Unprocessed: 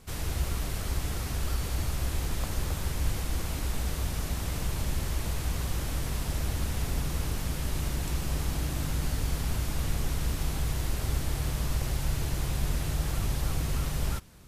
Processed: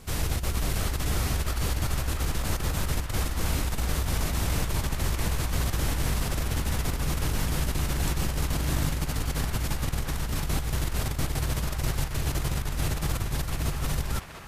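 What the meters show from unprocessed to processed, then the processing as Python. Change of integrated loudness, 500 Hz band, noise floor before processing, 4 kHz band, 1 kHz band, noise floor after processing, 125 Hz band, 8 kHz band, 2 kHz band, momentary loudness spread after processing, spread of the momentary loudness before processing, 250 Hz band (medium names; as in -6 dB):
+3.0 dB, +4.0 dB, -34 dBFS, +4.0 dB, +5.0 dB, -32 dBFS, +2.5 dB, +3.5 dB, +5.0 dB, 2 LU, 2 LU, +3.5 dB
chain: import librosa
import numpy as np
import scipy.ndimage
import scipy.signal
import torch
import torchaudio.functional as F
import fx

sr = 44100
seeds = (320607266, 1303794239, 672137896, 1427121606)

p1 = fx.over_compress(x, sr, threshold_db=-30.0, ratio=-0.5)
p2 = p1 + fx.echo_banded(p1, sr, ms=691, feedback_pct=62, hz=1400.0, wet_db=-4.5, dry=0)
y = p2 * 10.0 ** (4.0 / 20.0)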